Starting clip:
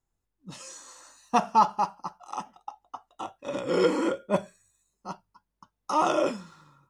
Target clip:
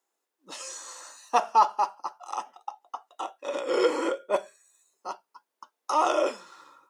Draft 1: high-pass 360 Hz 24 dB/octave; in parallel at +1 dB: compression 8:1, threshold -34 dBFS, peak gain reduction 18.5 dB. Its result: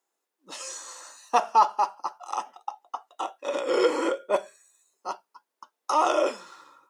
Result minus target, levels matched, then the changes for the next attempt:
compression: peak gain reduction -9 dB
change: compression 8:1, threshold -44 dBFS, peak gain reduction 27 dB

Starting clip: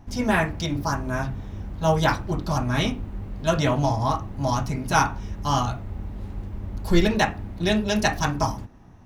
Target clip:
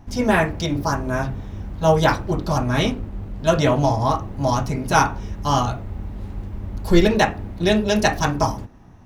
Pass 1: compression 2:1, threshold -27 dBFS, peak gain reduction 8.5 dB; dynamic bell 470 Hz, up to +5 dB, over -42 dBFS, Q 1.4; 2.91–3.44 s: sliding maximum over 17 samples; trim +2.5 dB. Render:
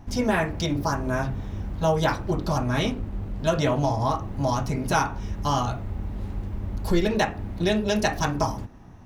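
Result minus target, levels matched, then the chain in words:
compression: peak gain reduction +8.5 dB
dynamic bell 470 Hz, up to +5 dB, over -42 dBFS, Q 1.4; 2.91–3.44 s: sliding maximum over 17 samples; trim +2.5 dB

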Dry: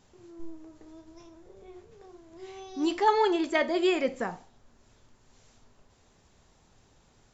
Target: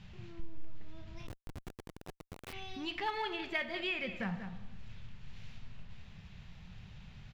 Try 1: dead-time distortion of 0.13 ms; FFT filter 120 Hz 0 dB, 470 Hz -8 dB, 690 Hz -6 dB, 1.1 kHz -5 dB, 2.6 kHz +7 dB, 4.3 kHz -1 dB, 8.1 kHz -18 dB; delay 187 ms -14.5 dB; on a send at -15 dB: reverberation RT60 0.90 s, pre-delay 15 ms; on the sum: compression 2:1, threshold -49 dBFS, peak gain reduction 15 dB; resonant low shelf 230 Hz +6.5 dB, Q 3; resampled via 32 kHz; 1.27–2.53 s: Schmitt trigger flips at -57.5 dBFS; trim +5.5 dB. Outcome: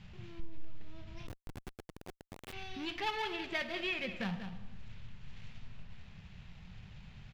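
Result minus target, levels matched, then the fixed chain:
dead-time distortion: distortion +12 dB
dead-time distortion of 0.046 ms; FFT filter 120 Hz 0 dB, 470 Hz -8 dB, 690 Hz -6 dB, 1.1 kHz -5 dB, 2.6 kHz +7 dB, 4.3 kHz -1 dB, 8.1 kHz -18 dB; delay 187 ms -14.5 dB; on a send at -15 dB: reverberation RT60 0.90 s, pre-delay 15 ms; on the sum: compression 2:1, threshold -49 dBFS, peak gain reduction 15 dB; resonant low shelf 230 Hz +6.5 dB, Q 3; resampled via 32 kHz; 1.27–2.53 s: Schmitt trigger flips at -57.5 dBFS; trim +5.5 dB

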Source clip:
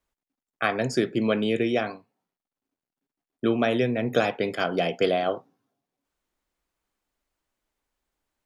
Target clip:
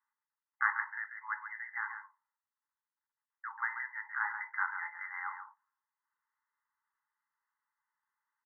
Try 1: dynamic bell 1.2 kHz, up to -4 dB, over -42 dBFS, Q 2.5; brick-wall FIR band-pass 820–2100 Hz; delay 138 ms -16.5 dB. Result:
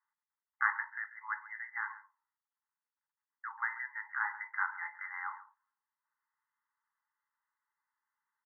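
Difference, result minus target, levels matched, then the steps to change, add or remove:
echo-to-direct -8 dB
change: delay 138 ms -8.5 dB

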